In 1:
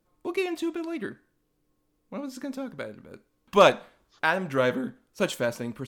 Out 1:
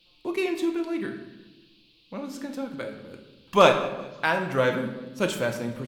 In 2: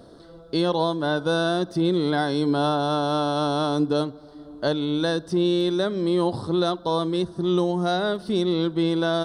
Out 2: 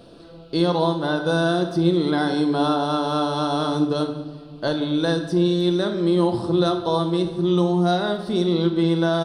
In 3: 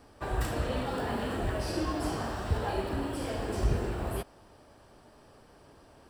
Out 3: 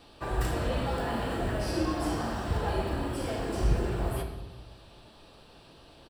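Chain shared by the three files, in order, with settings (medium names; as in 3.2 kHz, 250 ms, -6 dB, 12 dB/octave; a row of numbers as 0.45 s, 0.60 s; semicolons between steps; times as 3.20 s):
band noise 2.5–4.6 kHz -63 dBFS; on a send: feedback delay 193 ms, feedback 47%, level -23 dB; on the sum: simulated room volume 450 m³, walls mixed, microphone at 0.77 m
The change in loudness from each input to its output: +1.0 LU, +2.5 LU, +1.5 LU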